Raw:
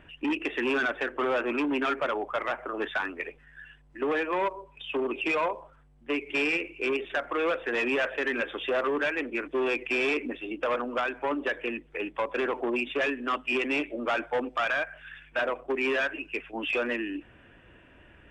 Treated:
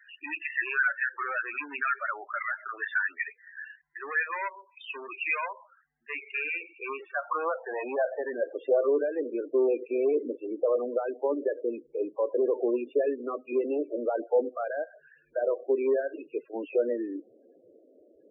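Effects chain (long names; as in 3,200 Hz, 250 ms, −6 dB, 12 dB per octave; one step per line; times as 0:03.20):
band-pass filter sweep 1,800 Hz → 460 Hz, 0:05.97–0:09.00
spectral peaks only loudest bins 16
level +6.5 dB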